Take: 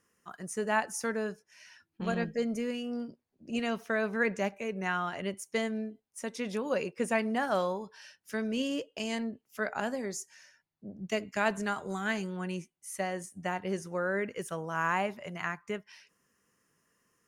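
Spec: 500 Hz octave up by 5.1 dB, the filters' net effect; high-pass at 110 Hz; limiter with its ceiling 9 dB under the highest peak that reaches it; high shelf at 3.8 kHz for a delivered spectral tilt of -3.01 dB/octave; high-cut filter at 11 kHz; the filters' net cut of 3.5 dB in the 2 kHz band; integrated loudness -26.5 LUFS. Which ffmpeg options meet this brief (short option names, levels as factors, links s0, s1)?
-af "highpass=110,lowpass=11000,equalizer=f=500:t=o:g=6.5,equalizer=f=2000:t=o:g=-3,highshelf=f=3800:g=-9,volume=2.24,alimiter=limit=0.168:level=0:latency=1"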